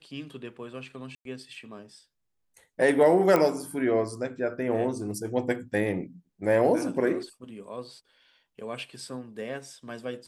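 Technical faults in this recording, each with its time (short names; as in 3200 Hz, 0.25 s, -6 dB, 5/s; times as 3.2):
1.15–1.25 gap 0.102 s
3.36 pop -11 dBFS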